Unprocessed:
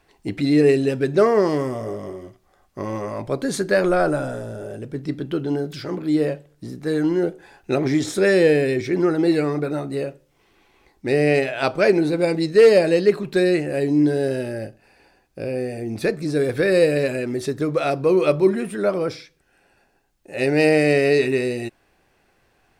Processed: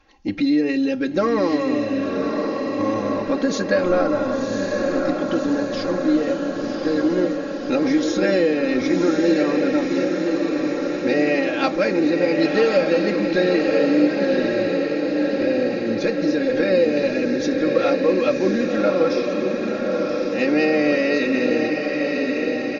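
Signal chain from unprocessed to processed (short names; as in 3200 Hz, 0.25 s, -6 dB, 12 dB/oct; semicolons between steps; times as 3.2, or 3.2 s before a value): comb 3.7 ms, depth 89%; compressor 3:1, threshold -17 dBFS, peak gain reduction 9 dB; brick-wall FIR low-pass 6900 Hz; on a send: diffused feedback echo 1.078 s, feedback 68%, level -3.5 dB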